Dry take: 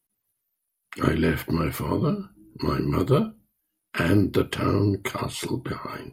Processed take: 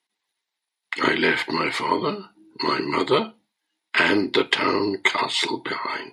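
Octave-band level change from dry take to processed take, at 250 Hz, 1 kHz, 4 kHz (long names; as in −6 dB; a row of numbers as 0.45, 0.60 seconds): −2.0, +7.5, +12.0 decibels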